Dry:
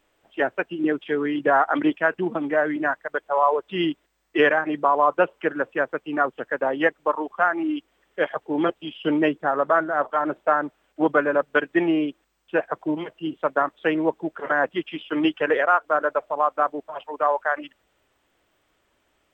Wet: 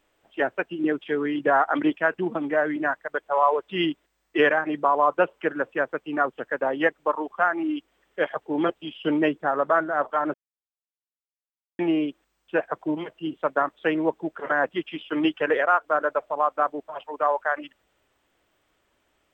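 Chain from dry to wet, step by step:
0:03.22–0:03.86: dynamic equaliser 2,300 Hz, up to +4 dB, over −34 dBFS, Q 0.95
0:10.34–0:11.79: silence
level −1.5 dB

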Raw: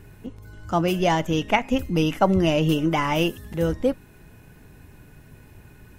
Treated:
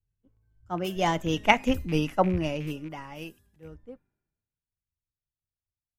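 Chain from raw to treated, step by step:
loose part that buzzes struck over −23 dBFS, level −24 dBFS
source passing by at 0:01.52, 16 m/s, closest 11 metres
multiband upward and downward expander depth 100%
level −5 dB

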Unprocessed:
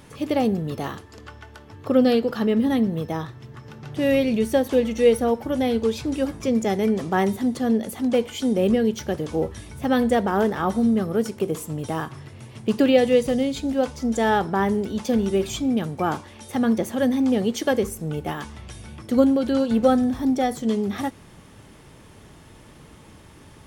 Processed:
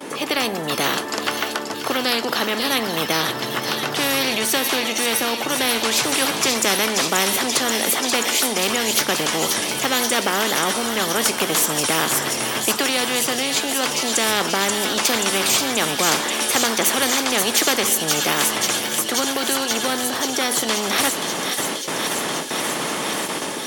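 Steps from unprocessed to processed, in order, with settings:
noise gate with hold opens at −38 dBFS
high-pass filter 290 Hz 24 dB per octave
low-shelf EQ 500 Hz +9.5 dB
automatic gain control gain up to 12 dB
on a send: delay with a high-pass on its return 532 ms, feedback 79%, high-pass 3,700 Hz, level −5.5 dB
on the sum: every bin compressed towards the loudest bin 4 to 1
level −2 dB

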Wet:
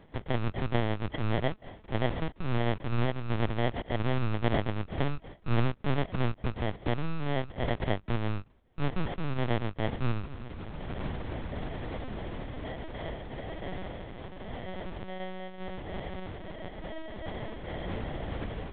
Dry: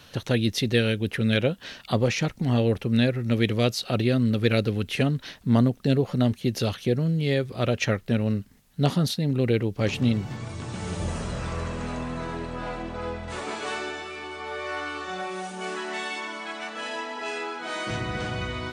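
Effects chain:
decimation without filtering 34×
linear-prediction vocoder at 8 kHz pitch kept
level −5 dB

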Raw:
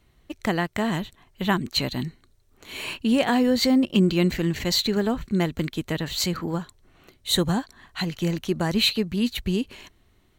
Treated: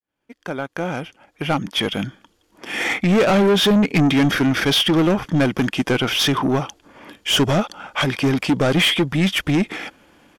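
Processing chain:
fade in at the beginning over 3.42 s
parametric band 420 Hz +7 dB 2.5 octaves
mid-hump overdrive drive 25 dB, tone 6,800 Hz, clips at −3.5 dBFS
pitch shifter −4 semitones
level −4.5 dB

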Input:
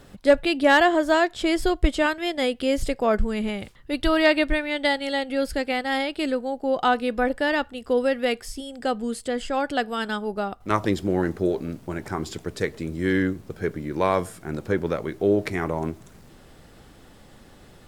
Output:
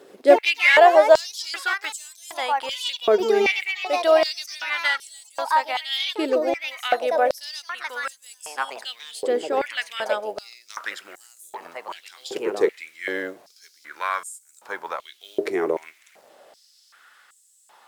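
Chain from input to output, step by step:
delay with pitch and tempo change per echo 86 ms, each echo +4 semitones, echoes 2, each echo −6 dB
log-companded quantiser 8 bits
high-pass on a step sequencer 2.6 Hz 400–7,700 Hz
level −2 dB

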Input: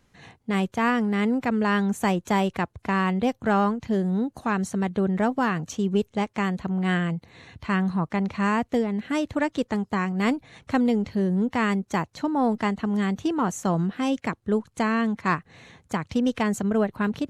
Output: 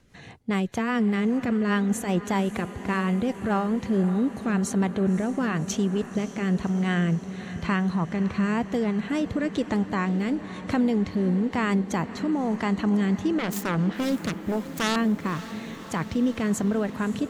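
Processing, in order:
0:13.35–0:14.96: phase distortion by the signal itself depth 0.52 ms
brickwall limiter −21.5 dBFS, peak gain reduction 11 dB
rotating-speaker cabinet horn 5 Hz, later 1 Hz, at 0:03.49
on a send: feedback delay with all-pass diffusion 559 ms, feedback 72%, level −14 dB
on the sum: level +6 dB

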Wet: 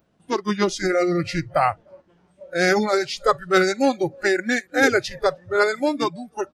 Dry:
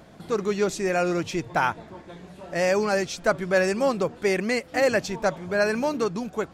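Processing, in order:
repeating echo 306 ms, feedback 43%, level −22 dB
formants moved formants −3 semitones
noise reduction from a noise print of the clip's start 21 dB
level +4.5 dB

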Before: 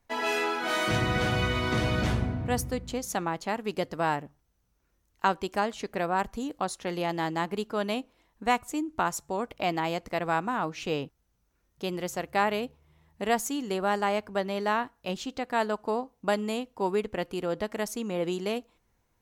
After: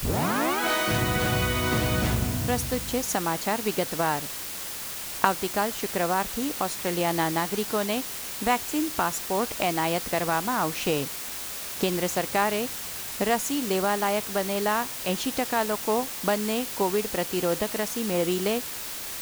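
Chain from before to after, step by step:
turntable start at the beginning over 0.60 s
camcorder AGC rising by 12 dB per second
bit-depth reduction 6 bits, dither triangular
level +1 dB

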